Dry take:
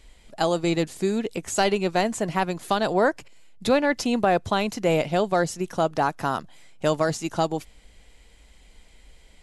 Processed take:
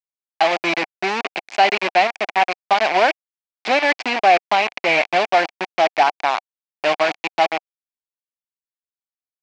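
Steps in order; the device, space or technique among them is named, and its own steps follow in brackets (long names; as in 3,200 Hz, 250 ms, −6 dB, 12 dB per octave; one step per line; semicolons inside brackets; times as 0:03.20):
hand-held game console (bit reduction 4 bits; loudspeaker in its box 470–4,600 Hz, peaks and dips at 480 Hz −8 dB, 750 Hz +7 dB, 1,300 Hz −4 dB, 2,300 Hz +9 dB, 3,700 Hz −4 dB)
level +5 dB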